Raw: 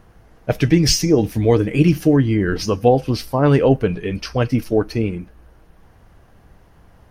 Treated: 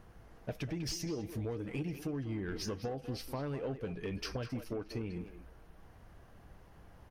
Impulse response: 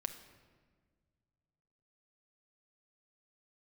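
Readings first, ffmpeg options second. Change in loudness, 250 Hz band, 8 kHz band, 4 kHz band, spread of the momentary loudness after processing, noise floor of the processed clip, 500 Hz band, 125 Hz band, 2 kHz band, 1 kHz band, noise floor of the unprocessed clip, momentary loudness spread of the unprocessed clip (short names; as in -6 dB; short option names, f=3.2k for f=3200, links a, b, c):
-22.0 dB, -22.0 dB, -20.5 dB, -19.5 dB, 21 LU, -58 dBFS, -23.0 dB, -21.5 dB, -19.5 dB, -23.0 dB, -51 dBFS, 9 LU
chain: -filter_complex "[0:a]acompressor=threshold=-25dB:ratio=16,asoftclip=type=tanh:threshold=-22.5dB,asplit=2[a][b];[b]adelay=200,highpass=300,lowpass=3.4k,asoftclip=type=hard:threshold=-31dB,volume=-7dB[c];[a][c]amix=inputs=2:normalize=0,volume=-7.5dB"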